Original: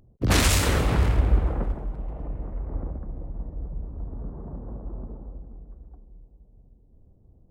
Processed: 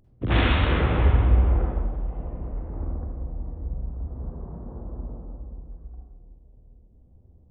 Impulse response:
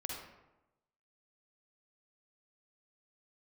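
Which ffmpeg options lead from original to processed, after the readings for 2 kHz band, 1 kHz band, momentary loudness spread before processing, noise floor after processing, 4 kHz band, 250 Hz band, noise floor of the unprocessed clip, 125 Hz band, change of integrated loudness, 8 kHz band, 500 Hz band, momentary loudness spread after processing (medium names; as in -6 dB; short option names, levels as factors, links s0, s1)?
0.0 dB, +1.0 dB, 18 LU, -55 dBFS, -4.0 dB, +0.5 dB, -57 dBFS, +2.0 dB, +1.0 dB, under -40 dB, +0.5 dB, 20 LU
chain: -filter_complex "[0:a]aresample=8000,aresample=44100[s0];[1:a]atrim=start_sample=2205[s1];[s0][s1]afir=irnorm=-1:irlink=0"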